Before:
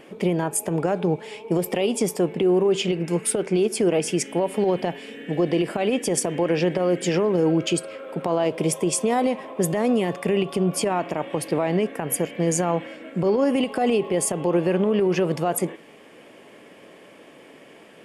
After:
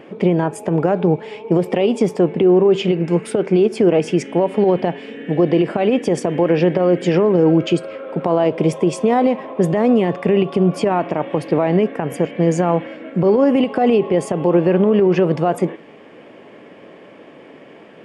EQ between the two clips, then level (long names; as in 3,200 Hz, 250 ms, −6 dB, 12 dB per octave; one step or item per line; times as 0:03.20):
high-pass filter 53 Hz
head-to-tape spacing loss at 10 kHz 22 dB
+7.5 dB